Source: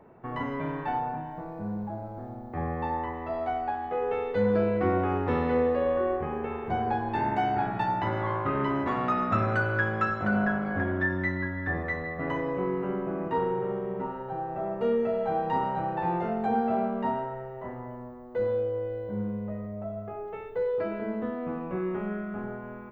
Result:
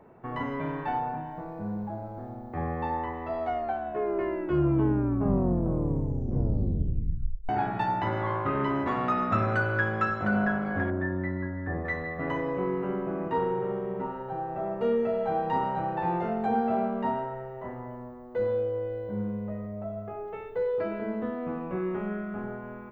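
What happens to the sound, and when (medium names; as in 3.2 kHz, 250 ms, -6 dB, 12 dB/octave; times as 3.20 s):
3.40 s: tape stop 4.09 s
10.90–11.85 s: FFT filter 570 Hz 0 dB, 2.7 kHz -11 dB, 4.6 kHz -23 dB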